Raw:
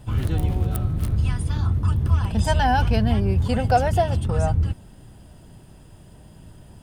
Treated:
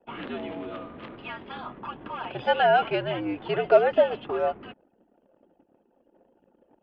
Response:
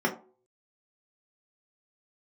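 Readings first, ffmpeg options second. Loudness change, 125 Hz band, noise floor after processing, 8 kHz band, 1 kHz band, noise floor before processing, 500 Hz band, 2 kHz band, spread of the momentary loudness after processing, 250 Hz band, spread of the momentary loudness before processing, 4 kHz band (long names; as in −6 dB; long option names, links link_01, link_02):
−3.5 dB, −24.0 dB, −68 dBFS, below −35 dB, −2.5 dB, −47 dBFS, +3.5 dB, +0.5 dB, 19 LU, −8.5 dB, 5 LU, −1.5 dB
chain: -af "highpass=frequency=350:width_type=q:width=0.5412,highpass=frequency=350:width_type=q:width=1.307,lowpass=frequency=3300:width_type=q:width=0.5176,lowpass=frequency=3300:width_type=q:width=0.7071,lowpass=frequency=3300:width_type=q:width=1.932,afreqshift=-81,crystalizer=i=0.5:c=0,anlmdn=0.00251,volume=1.5dB"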